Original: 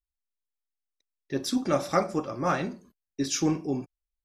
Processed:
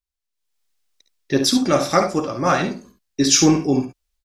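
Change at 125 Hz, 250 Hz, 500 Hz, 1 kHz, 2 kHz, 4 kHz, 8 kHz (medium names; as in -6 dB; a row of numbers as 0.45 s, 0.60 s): +9.0 dB, +10.0 dB, +9.0 dB, +8.5 dB, +10.0 dB, +15.0 dB, +14.5 dB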